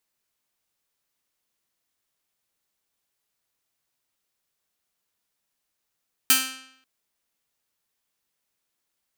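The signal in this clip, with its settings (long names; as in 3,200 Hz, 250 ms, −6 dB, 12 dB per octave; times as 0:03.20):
Karplus-Strong string C4, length 0.54 s, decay 0.73 s, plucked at 0.47, bright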